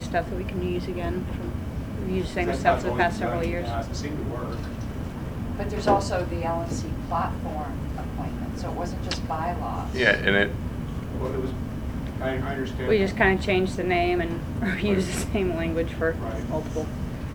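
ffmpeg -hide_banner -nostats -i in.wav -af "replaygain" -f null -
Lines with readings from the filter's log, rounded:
track_gain = +5.7 dB
track_peak = 0.413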